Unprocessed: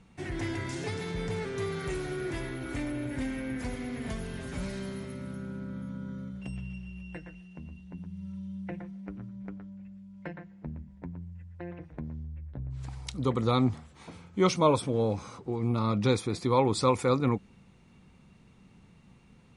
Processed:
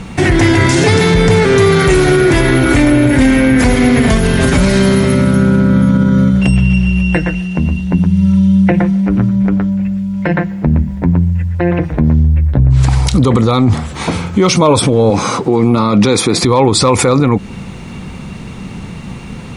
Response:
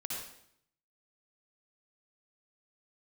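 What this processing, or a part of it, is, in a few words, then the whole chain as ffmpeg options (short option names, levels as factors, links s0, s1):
loud club master: -filter_complex "[0:a]asettb=1/sr,asplit=3[s0][s1][s2];[s0]atrim=end=15.104[s3];[s1]atrim=start=15.1:end=16.42,asetpts=PTS-STARTPTS,afade=t=in:d=0.004:c=qsin,afade=t=out:st=1.316:d=0.004:c=qsin,highpass=160[s4];[s2]atrim=start=16.416[s5];[s3][s4]acrossfade=d=0.004:c1=hsin:c2=qsin[s6];[s6][s5]acrossfade=d=0.004:c1=qsin:c2=hsin,acompressor=threshold=0.02:ratio=1.5,asoftclip=type=hard:threshold=0.106,alimiter=level_in=37.6:limit=0.891:release=50:level=0:latency=1,volume=0.891"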